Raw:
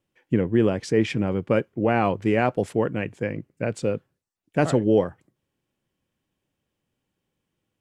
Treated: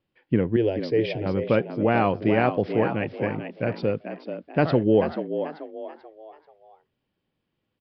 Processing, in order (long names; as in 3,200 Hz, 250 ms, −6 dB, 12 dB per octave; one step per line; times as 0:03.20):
0:00.56–0:01.26: phaser with its sweep stopped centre 490 Hz, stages 4
echo with shifted repeats 436 ms, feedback 37%, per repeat +73 Hz, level −9 dB
downsampling to 11,025 Hz